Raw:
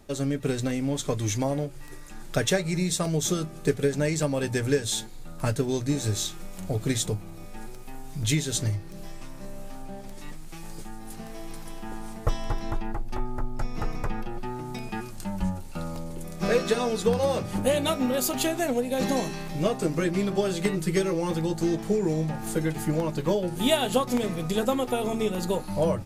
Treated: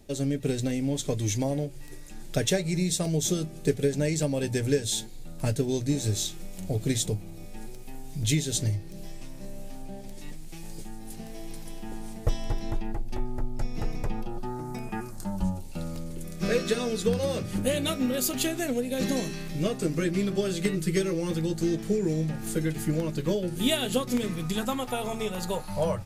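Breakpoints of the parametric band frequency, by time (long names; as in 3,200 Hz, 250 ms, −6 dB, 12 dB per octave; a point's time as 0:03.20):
parametric band −11 dB 1 octave
0:14.00 1,200 Hz
0:14.90 4,300 Hz
0:15.98 870 Hz
0:24.08 870 Hz
0:25.11 290 Hz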